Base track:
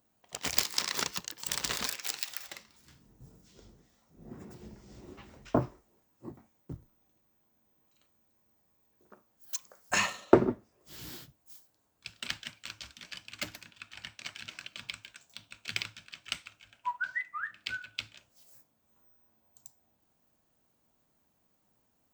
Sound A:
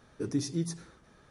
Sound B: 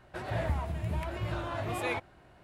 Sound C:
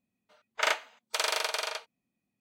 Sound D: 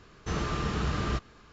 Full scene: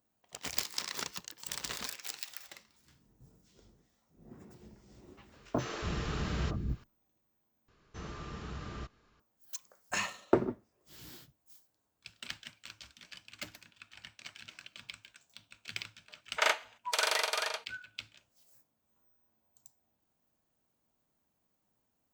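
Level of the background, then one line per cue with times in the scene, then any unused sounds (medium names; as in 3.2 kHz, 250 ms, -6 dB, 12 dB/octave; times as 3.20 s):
base track -6 dB
5.32 s: add D -3.5 dB + three bands offset in time highs, mids, lows 50/240 ms, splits 310/1100 Hz
7.68 s: replace with D -13 dB
15.79 s: add C -1 dB
not used: A, B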